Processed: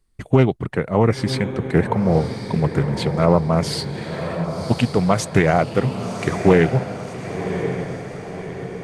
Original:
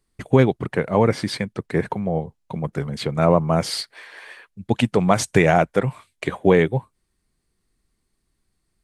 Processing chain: low shelf 91 Hz +10 dB; AGC gain up to 9.5 dB; on a send: diffused feedback echo 1.085 s, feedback 53%, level -8.5 dB; on the sum: Doppler distortion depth 0.25 ms; gain -1 dB

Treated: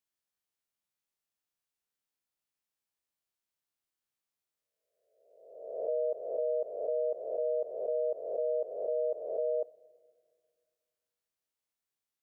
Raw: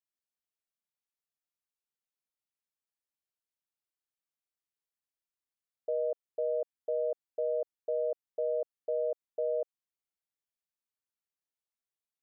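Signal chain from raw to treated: spectral swells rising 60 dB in 1.08 s; reverb RT60 2.1 s, pre-delay 4 ms, DRR 17 dB

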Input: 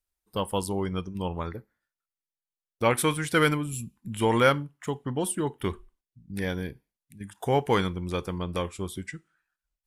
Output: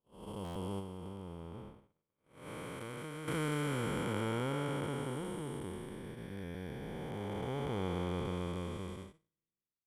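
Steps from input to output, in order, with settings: time blur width 1.12 s; gate -40 dBFS, range -43 dB; 0.79–3.28 compressor 10:1, threshold -37 dBFS, peak gain reduction 9.5 dB; stuck buffer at 0.44/6.43, samples 512, times 9; gain -3.5 dB

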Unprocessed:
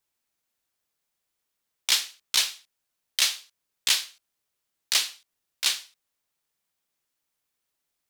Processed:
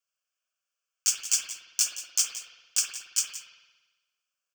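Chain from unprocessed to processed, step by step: LPF 12000 Hz 12 dB/oct; low shelf 100 Hz -11 dB; in parallel at -4 dB: crossover distortion -40.5 dBFS; on the sum: fixed phaser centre 1300 Hz, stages 8; wide varispeed 1.78×; frequency shift +420 Hz; soft clip -11.5 dBFS, distortion -19 dB; echo 0.174 s -14 dB; spring tank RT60 1.2 s, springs 56 ms, chirp 60 ms, DRR 1 dB

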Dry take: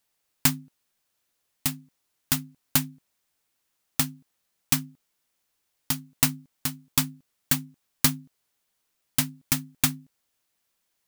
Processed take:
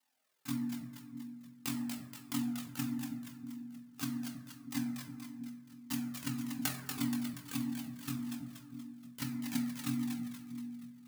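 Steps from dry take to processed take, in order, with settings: HPF 220 Hz 12 dB/oct; high shelf 4800 Hz -5.5 dB; negative-ratio compressor -30 dBFS, ratio -0.5; ring modulator 21 Hz; split-band echo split 410 Hz, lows 0.321 s, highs 0.238 s, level -5.5 dB; reverb RT60 1.2 s, pre-delay 4 ms, DRR 1.5 dB; cascading flanger falling 1.7 Hz; gain +1 dB

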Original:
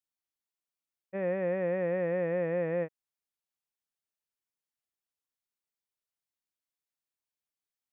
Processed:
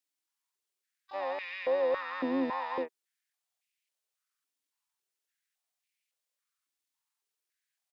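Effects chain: tilt shelf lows -6.5 dB, about 1500 Hz; harmoniser -12 st -2 dB, +7 st -11 dB, +12 st -9 dB; stepped high-pass 3.6 Hz 280–2300 Hz; gain -3.5 dB

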